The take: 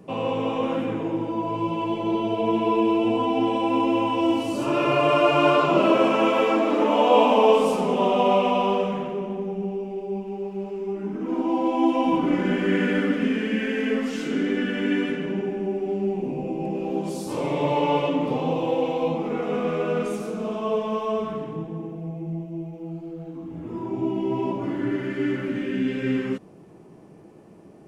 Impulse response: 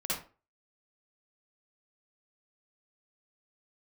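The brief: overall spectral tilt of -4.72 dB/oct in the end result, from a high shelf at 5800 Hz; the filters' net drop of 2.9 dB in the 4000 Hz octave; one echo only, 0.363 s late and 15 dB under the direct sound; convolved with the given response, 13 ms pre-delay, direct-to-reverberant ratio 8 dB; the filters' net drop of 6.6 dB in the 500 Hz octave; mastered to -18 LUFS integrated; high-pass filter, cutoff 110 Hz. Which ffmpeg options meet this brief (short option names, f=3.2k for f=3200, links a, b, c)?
-filter_complex "[0:a]highpass=110,equalizer=f=500:t=o:g=-8.5,equalizer=f=4k:t=o:g=-6.5,highshelf=f=5.8k:g=5.5,aecho=1:1:363:0.178,asplit=2[a][b];[1:a]atrim=start_sample=2205,adelay=13[c];[b][c]afir=irnorm=-1:irlink=0,volume=-13dB[d];[a][d]amix=inputs=2:normalize=0,volume=8.5dB"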